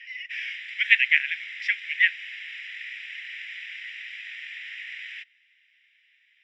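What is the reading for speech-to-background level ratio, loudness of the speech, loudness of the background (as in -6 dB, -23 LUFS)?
14.0 dB, -23.0 LUFS, -37.0 LUFS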